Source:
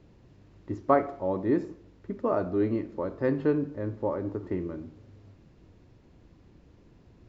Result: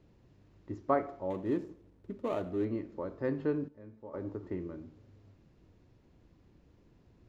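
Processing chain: 1.3–2.65 median filter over 25 samples; 3.68–4.14 resonator 220 Hz, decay 0.52 s, harmonics all, mix 80%; gain -6.5 dB

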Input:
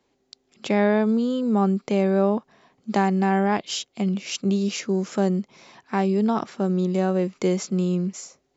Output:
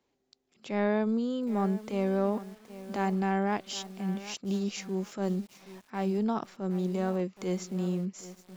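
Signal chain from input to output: transient shaper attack -8 dB, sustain -3 dB; lo-fi delay 0.771 s, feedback 35%, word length 6-bit, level -14.5 dB; gain -7 dB

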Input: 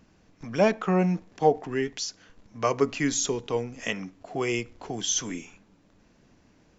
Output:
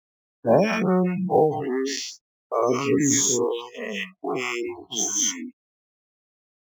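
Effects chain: spectral dilation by 0.24 s; spectral noise reduction 29 dB; low-pass opened by the level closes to 940 Hz, open at -16.5 dBFS; phaser stages 2, 2.4 Hz, lowest notch 460–3500 Hz; gate -36 dBFS, range -51 dB; HPF 88 Hz 24 dB/oct; dynamic EQ 4200 Hz, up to -6 dB, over -38 dBFS, Q 2; spectral gate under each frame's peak -30 dB strong; IMA ADPCM 176 kbps 44100 Hz

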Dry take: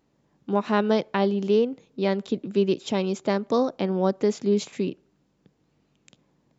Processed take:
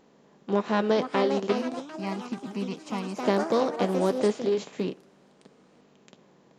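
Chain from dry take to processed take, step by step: per-bin compression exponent 0.6; 1.52–3.21 fixed phaser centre 2400 Hz, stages 8; echoes that change speed 0.586 s, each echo +4 st, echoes 3, each echo -6 dB; flange 0.35 Hz, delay 3.8 ms, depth 4.2 ms, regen -62%; upward expander 1.5:1, over -39 dBFS; gain +1 dB

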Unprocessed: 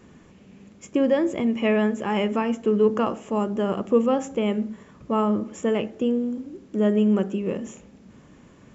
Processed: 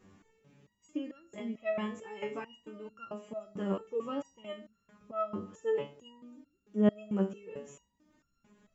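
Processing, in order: 5.35–6.05 notch 2200 Hz, Q 6.3; stepped resonator 4.5 Hz 97–1400 Hz

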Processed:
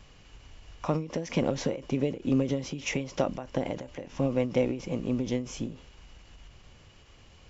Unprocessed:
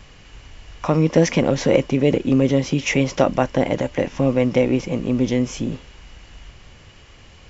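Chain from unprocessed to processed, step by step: bell 1900 Hz -3.5 dB 0.66 oct; ending taper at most 130 dB/s; gain -8 dB

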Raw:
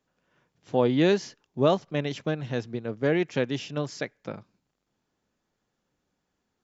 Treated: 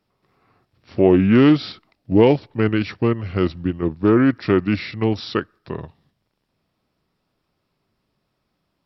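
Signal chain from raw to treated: dynamic EQ 420 Hz, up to +4 dB, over -33 dBFS, Q 1.6; in parallel at +0.5 dB: level quantiser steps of 15 dB; on the sum: varispeed -25%; Doppler distortion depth 0.12 ms; gain +4 dB

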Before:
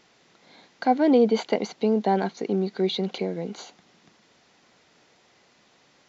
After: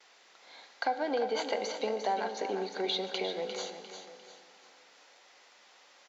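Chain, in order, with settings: gate with hold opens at -52 dBFS; HPF 620 Hz 12 dB/oct; compressor 4:1, threshold -30 dBFS, peak gain reduction 10.5 dB; feedback echo 0.351 s, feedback 39%, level -8.5 dB; reverb RT60 2.4 s, pre-delay 3 ms, DRR 9.5 dB; gain +1 dB

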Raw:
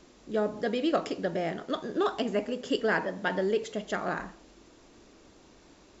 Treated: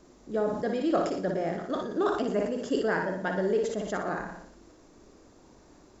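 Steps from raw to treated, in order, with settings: bell 3000 Hz -9.5 dB 1.4 oct; flutter echo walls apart 10.1 m, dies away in 0.59 s; sustainer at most 62 dB/s

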